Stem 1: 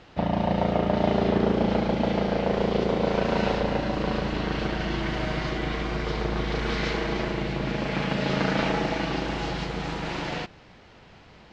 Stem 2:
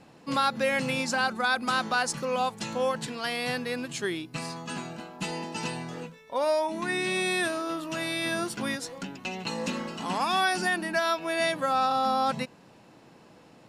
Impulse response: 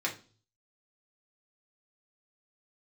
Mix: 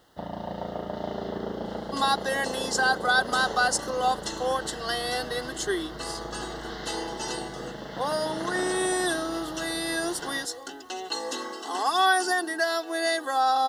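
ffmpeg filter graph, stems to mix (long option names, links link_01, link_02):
-filter_complex "[0:a]volume=-8.5dB[link_01];[1:a]highpass=frequency=270:width=0.5412,highpass=frequency=270:width=1.3066,aecho=1:1:2.6:0.65,adelay=1650,volume=0.5dB[link_02];[link_01][link_02]amix=inputs=2:normalize=0,bass=frequency=250:gain=-6,treble=frequency=4000:gain=3,acrusher=bits=10:mix=0:aa=0.000001,asuperstop=centerf=2400:order=4:qfactor=2.6"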